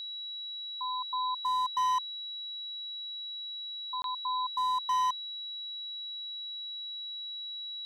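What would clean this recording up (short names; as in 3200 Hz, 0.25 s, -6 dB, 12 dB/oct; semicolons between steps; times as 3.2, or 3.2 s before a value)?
clip repair -25 dBFS; notch 3900 Hz, Q 30; interpolate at 4.02, 22 ms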